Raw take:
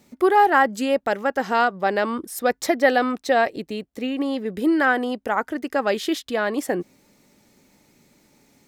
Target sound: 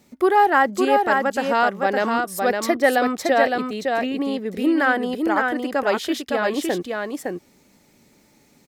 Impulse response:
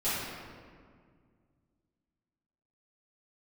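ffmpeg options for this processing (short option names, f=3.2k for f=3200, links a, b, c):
-af "aecho=1:1:561:0.631"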